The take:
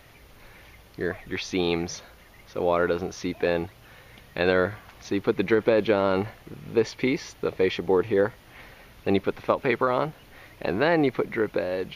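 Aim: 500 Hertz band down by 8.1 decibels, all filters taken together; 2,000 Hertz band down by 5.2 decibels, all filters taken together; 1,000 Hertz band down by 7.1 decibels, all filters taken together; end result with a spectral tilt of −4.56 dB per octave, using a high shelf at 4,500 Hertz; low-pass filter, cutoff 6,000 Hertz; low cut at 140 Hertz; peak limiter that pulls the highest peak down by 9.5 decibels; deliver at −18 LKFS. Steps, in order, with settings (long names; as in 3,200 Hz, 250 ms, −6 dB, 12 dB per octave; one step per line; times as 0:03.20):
high-pass filter 140 Hz
low-pass filter 6,000 Hz
parametric band 500 Hz −8.5 dB
parametric band 1,000 Hz −5.5 dB
parametric band 2,000 Hz −3.5 dB
high-shelf EQ 4,500 Hz −4 dB
level +17.5 dB
brickwall limiter −4 dBFS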